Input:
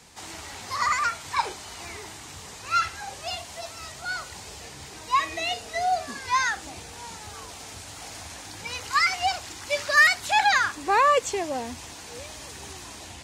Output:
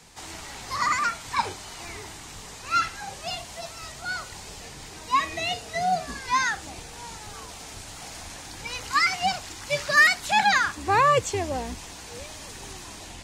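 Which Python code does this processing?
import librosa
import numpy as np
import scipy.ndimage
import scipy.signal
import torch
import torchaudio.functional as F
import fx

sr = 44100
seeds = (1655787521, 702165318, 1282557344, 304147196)

y = fx.octave_divider(x, sr, octaves=2, level_db=3.0)
y = fx.low_shelf(y, sr, hz=64.0, db=-6.5)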